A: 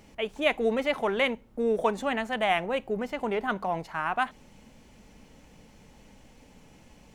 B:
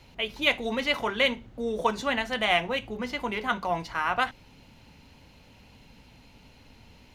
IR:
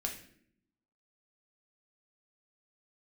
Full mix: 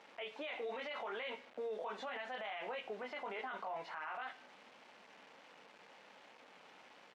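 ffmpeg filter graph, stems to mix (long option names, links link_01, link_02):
-filter_complex "[0:a]acompressor=threshold=-33dB:ratio=3,volume=-2.5dB,asplit=3[link_01][link_02][link_03];[link_02]volume=-12.5dB[link_04];[1:a]adelay=17,volume=-10.5dB,asplit=2[link_05][link_06];[link_06]volume=-14.5dB[link_07];[link_03]apad=whole_len=320181[link_08];[link_05][link_08]sidechaingate=range=-33dB:threshold=-53dB:ratio=16:detection=peak[link_09];[2:a]atrim=start_sample=2205[link_10];[link_04][link_07]amix=inputs=2:normalize=0[link_11];[link_11][link_10]afir=irnorm=-1:irlink=0[link_12];[link_01][link_09][link_12]amix=inputs=3:normalize=0,acrusher=bits=8:mix=0:aa=0.000001,highpass=560,lowpass=2900,alimiter=level_in=11dB:limit=-24dB:level=0:latency=1:release=16,volume=-11dB"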